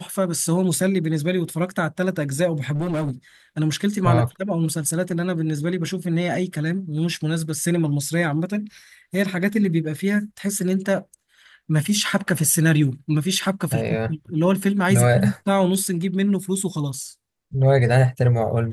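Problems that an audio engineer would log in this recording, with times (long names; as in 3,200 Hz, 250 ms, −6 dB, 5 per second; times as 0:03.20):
0:02.75–0:03.11: clipping −20.5 dBFS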